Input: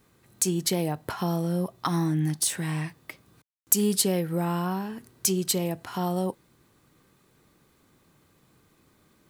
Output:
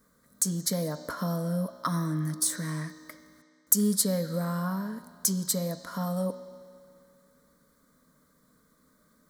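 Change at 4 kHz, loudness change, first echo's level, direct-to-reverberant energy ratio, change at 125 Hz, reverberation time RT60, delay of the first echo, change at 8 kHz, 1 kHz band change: -4.5 dB, -2.0 dB, no echo, 11.0 dB, -2.5 dB, 2.3 s, no echo, -1.0 dB, -4.5 dB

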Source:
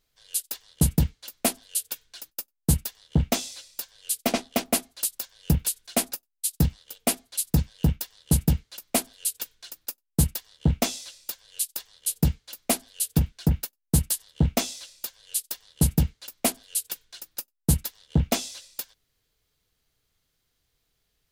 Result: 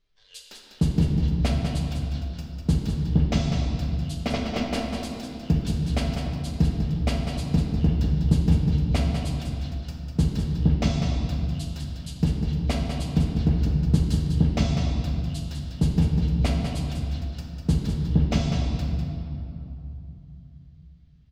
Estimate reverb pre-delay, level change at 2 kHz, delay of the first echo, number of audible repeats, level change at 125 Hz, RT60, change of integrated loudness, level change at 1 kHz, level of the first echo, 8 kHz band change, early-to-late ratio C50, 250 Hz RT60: 5 ms, -0.5 dB, 198 ms, 1, +5.0 dB, 3.0 s, +2.0 dB, -0.5 dB, -7.0 dB, -16.0 dB, 0.0 dB, 3.9 s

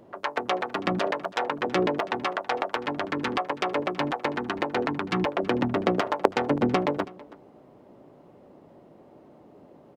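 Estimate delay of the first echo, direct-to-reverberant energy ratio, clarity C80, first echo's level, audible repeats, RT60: 326 ms, no reverb, no reverb, -20.5 dB, 1, no reverb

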